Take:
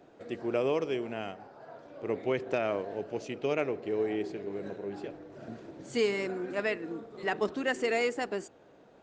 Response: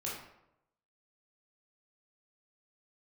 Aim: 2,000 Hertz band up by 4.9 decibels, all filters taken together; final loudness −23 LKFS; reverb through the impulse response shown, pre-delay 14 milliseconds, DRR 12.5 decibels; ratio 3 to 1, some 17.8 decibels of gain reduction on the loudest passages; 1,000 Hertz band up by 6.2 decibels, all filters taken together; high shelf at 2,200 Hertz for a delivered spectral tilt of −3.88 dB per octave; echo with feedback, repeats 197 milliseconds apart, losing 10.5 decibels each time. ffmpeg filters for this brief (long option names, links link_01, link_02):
-filter_complex "[0:a]equalizer=frequency=1000:width_type=o:gain=8.5,equalizer=frequency=2000:width_type=o:gain=5.5,highshelf=frequency=2200:gain=-4,acompressor=threshold=-47dB:ratio=3,aecho=1:1:197|394|591:0.299|0.0896|0.0269,asplit=2[link_01][link_02];[1:a]atrim=start_sample=2205,adelay=14[link_03];[link_02][link_03]afir=irnorm=-1:irlink=0,volume=-14.5dB[link_04];[link_01][link_04]amix=inputs=2:normalize=0,volume=22.5dB"